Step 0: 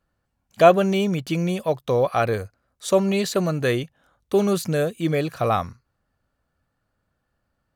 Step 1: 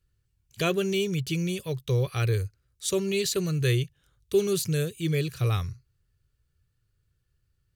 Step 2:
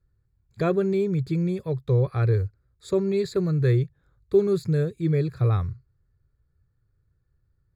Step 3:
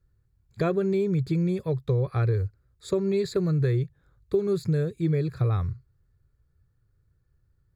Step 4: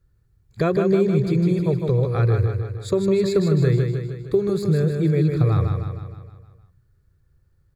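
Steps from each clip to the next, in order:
FFT filter 130 Hz 0 dB, 240 Hz -21 dB, 400 Hz -7 dB, 650 Hz -27 dB, 2.7 kHz -6 dB, 7.2 kHz -3 dB; trim +5 dB
boxcar filter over 15 samples; trim +4 dB
compression, threshold -22 dBFS, peak gain reduction 8.5 dB; trim +1.5 dB
feedback delay 155 ms, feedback 55%, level -5 dB; trim +4.5 dB

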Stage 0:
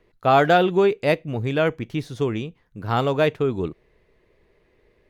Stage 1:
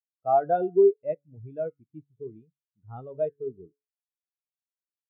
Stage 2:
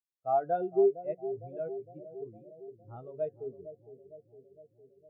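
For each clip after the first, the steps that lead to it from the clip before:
de-hum 142.6 Hz, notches 16; spectral contrast expander 2.5:1; trim -6.5 dB
bucket-brigade echo 458 ms, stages 2048, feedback 65%, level -12 dB; trim -6 dB

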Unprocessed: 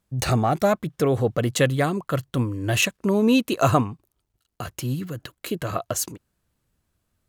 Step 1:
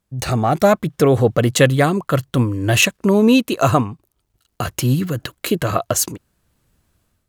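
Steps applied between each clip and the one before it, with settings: level rider gain up to 10 dB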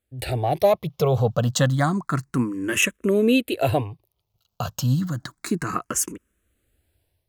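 barber-pole phaser +0.3 Hz; trim -3 dB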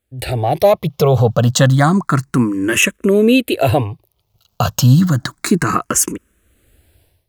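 in parallel at -1 dB: peak limiter -17.5 dBFS, peak gain reduction 10 dB; on the sum: level rider gain up to 10 dB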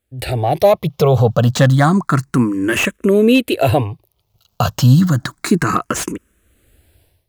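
slew-rate limiter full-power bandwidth 580 Hz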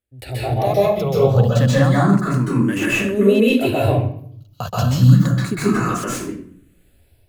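reverberation RT60 0.60 s, pre-delay 124 ms, DRR -7 dB; trim -11 dB

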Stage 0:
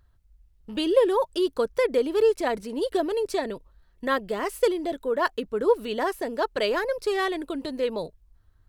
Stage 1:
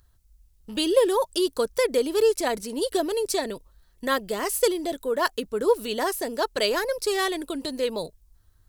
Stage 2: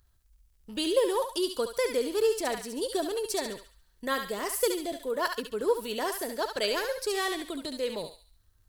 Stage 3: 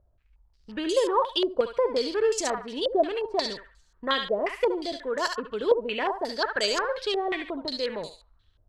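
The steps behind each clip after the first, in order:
tone controls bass 0 dB, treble +13 dB
crackle 83 per s -56 dBFS; on a send: thinning echo 70 ms, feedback 45%, high-pass 1.2 kHz, level -4 dB; on the sum: trim -5.5 dB
step-sequenced low-pass 5.6 Hz 620–6700 Hz; trim +1 dB

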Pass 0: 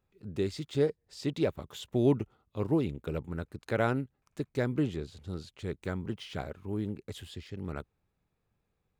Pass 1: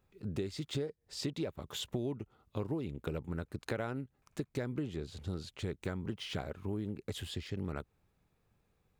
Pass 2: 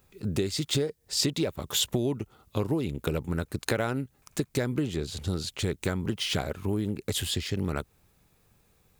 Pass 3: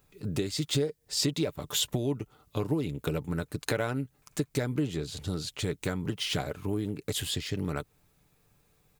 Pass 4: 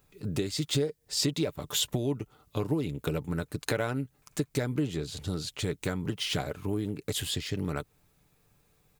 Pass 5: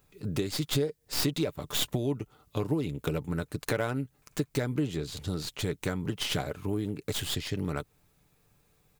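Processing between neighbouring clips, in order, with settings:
compression 10:1, threshold -38 dBFS, peak gain reduction 18.5 dB; trim +4.5 dB
treble shelf 4.4 kHz +11.5 dB; trim +8.5 dB
comb 6.8 ms, depth 35%; trim -2.5 dB
no audible change
tracing distortion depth 0.16 ms

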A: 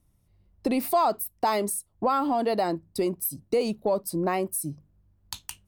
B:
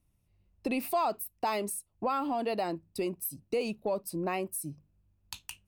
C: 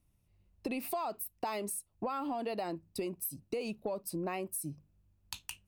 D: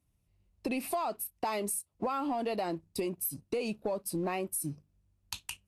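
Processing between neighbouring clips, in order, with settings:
peaking EQ 2.6 kHz +10 dB 0.28 oct; trim -6.5 dB
compression, threshold -33 dBFS, peak gain reduction 8.5 dB
waveshaping leveller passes 1; Vorbis 48 kbps 32 kHz

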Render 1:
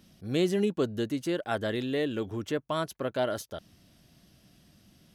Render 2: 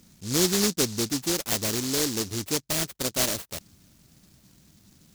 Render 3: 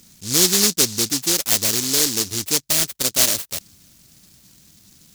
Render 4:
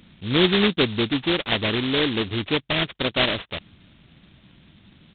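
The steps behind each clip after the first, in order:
delay time shaken by noise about 5.4 kHz, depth 0.36 ms; trim +3 dB
treble shelf 2.1 kHz +9.5 dB; trim +1 dB
resampled via 8 kHz; trim +4.5 dB

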